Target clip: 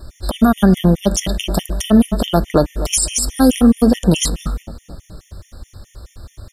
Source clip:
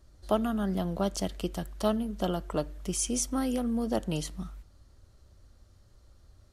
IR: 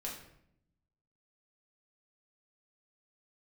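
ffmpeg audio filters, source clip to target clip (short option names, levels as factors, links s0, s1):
-filter_complex "[0:a]highshelf=f=8200:g=4,asplit=2[s0][s1];[s1]adelay=242,lowpass=f=2000:p=1,volume=0.1,asplit=2[s2][s3];[s3]adelay=242,lowpass=f=2000:p=1,volume=0.53,asplit=2[s4][s5];[s5]adelay=242,lowpass=f=2000:p=1,volume=0.53,asplit=2[s6][s7];[s7]adelay=242,lowpass=f=2000:p=1,volume=0.53[s8];[s0][s2][s4][s6][s8]amix=inputs=5:normalize=0,alimiter=level_in=16.8:limit=0.891:release=50:level=0:latency=1,afftfilt=real='re*gt(sin(2*PI*4.7*pts/sr)*(1-2*mod(floor(b*sr/1024/1800),2)),0)':imag='im*gt(sin(2*PI*4.7*pts/sr)*(1-2*mod(floor(b*sr/1024/1800),2)),0)':win_size=1024:overlap=0.75,volume=0.891"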